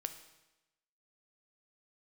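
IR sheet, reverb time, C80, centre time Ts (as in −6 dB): 1.0 s, 13.0 dB, 11 ms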